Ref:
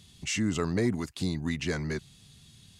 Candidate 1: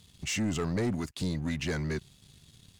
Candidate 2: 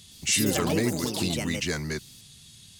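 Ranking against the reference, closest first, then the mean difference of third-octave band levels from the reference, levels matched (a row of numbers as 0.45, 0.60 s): 1, 2; 2.0, 6.5 dB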